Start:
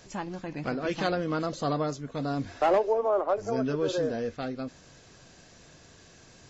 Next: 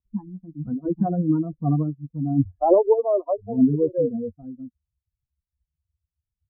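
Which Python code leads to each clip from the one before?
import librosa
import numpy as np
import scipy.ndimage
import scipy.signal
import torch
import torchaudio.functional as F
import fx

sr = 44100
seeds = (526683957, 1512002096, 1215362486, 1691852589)

y = fx.bin_expand(x, sr, power=3.0)
y = scipy.signal.sosfilt(scipy.signal.butter(6, 940.0, 'lowpass', fs=sr, output='sos'), y)
y = fx.peak_eq(y, sr, hz=200.0, db=14.0, octaves=2.8)
y = y * 10.0 ** (4.0 / 20.0)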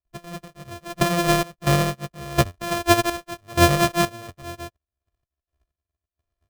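y = np.r_[np.sort(x[:len(x) // 128 * 128].reshape(-1, 128), axis=1).ravel(), x[len(x) // 128 * 128:]]
y = y + 0.58 * np.pad(y, (int(1.7 * sr / 1000.0), 0))[:len(y)]
y = fx.step_gate(y, sr, bpm=63, pattern='.x..xx.xx.x', floor_db=-12.0, edge_ms=4.5)
y = y * 10.0 ** (2.5 / 20.0)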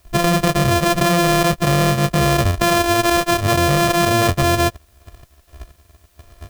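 y = fx.env_flatten(x, sr, amount_pct=100)
y = y * 10.0 ** (-4.0 / 20.0)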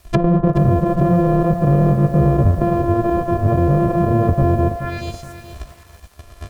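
y = fx.echo_stepped(x, sr, ms=107, hz=780.0, octaves=0.7, feedback_pct=70, wet_db=-6.0)
y = fx.env_lowpass_down(y, sr, base_hz=500.0, full_db=-15.5)
y = fx.echo_crushed(y, sr, ms=425, feedback_pct=35, bits=7, wet_db=-11.0)
y = y * 10.0 ** (4.0 / 20.0)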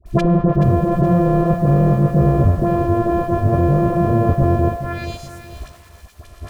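y = fx.dispersion(x, sr, late='highs', ms=61.0, hz=1000.0)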